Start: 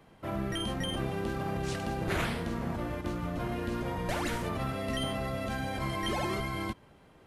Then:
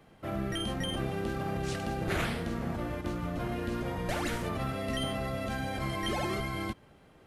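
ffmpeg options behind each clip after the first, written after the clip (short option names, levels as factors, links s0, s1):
-af "bandreject=f=980:w=11"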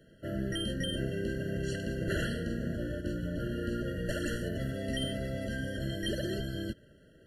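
-af "afftfilt=real='re*eq(mod(floor(b*sr/1024/670),2),0)':imag='im*eq(mod(floor(b*sr/1024/670),2),0)':win_size=1024:overlap=0.75"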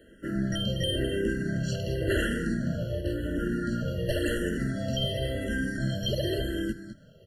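-filter_complex "[0:a]asplit=2[s0][s1];[s1]aecho=0:1:207:0.282[s2];[s0][s2]amix=inputs=2:normalize=0,asplit=2[s3][s4];[s4]afreqshift=-0.93[s5];[s3][s5]amix=inputs=2:normalize=1,volume=2.37"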